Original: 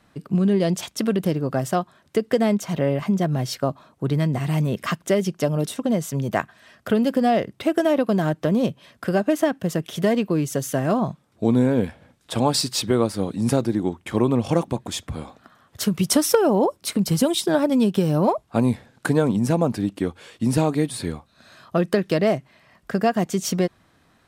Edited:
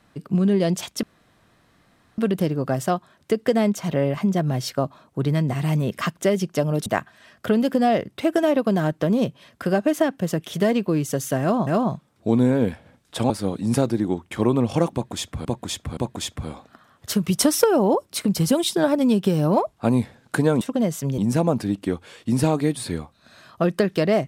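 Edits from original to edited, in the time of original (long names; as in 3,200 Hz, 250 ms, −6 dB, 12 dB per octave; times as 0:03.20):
0:01.03: splice in room tone 1.15 s
0:05.71–0:06.28: move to 0:19.32
0:10.83–0:11.09: repeat, 2 plays
0:12.46–0:13.05: remove
0:14.68–0:15.20: repeat, 3 plays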